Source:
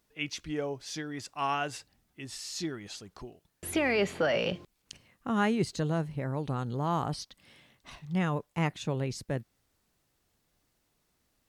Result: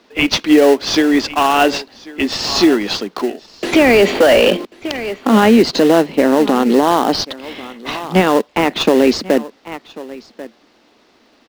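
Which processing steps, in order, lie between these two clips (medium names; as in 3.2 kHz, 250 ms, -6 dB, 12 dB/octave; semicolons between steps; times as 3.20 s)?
steep high-pass 220 Hz 48 dB/octave; on a send: delay 1090 ms -22 dB; on the sum: dynamic bell 1.4 kHz, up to -4 dB, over -47 dBFS, Q 1.5; low-pass 4.9 kHz 24 dB/octave; in parallel at -8 dB: sample-rate reducer 2.3 kHz, jitter 20%; on the sum: loudness maximiser +25.5 dB; trim -1 dB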